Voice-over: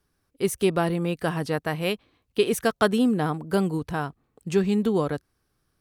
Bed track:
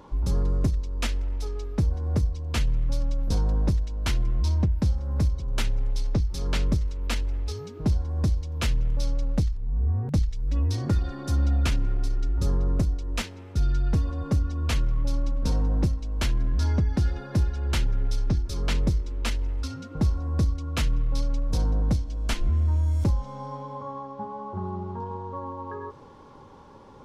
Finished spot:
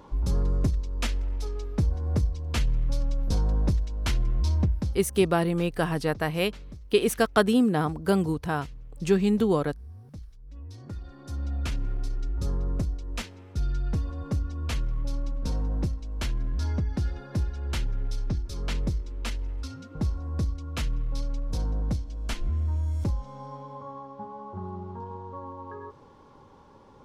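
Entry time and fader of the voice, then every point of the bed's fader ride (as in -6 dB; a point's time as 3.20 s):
4.55 s, 0.0 dB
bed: 4.70 s -1 dB
5.30 s -19.5 dB
10.48 s -19.5 dB
11.85 s -4.5 dB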